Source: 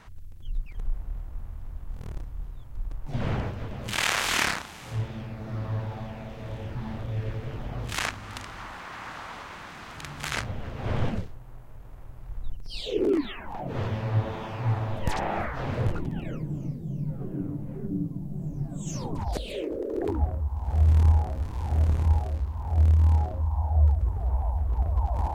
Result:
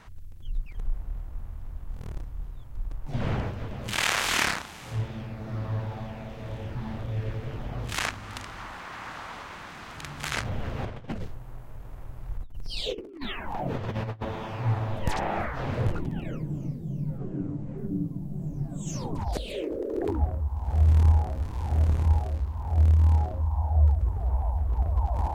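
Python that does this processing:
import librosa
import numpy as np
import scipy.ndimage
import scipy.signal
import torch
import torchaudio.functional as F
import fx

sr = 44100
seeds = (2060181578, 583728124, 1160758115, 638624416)

y = fx.over_compress(x, sr, threshold_db=-31.0, ratio=-0.5, at=(10.45, 14.25))
y = fx.steep_lowpass(y, sr, hz=8200.0, slope=96, at=(17.18, 17.78))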